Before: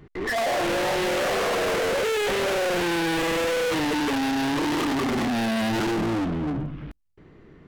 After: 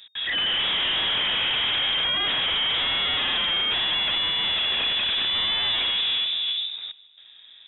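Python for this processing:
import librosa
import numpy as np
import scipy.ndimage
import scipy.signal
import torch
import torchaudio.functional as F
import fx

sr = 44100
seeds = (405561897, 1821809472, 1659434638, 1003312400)

p1 = x + fx.echo_feedback(x, sr, ms=154, feedback_pct=58, wet_db=-21.5, dry=0)
y = fx.freq_invert(p1, sr, carrier_hz=3700)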